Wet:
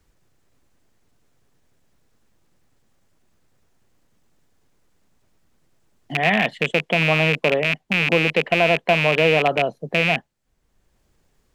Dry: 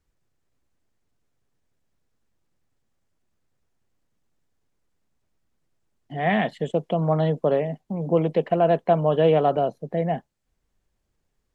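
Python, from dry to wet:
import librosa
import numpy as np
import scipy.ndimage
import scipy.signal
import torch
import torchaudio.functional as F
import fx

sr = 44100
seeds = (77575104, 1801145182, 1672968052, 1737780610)

y = fx.rattle_buzz(x, sr, strikes_db=-29.0, level_db=-14.0)
y = fx.dynamic_eq(y, sr, hz=2400.0, q=0.74, threshold_db=-37.0, ratio=4.0, max_db=6)
y = fx.band_squash(y, sr, depth_pct=40)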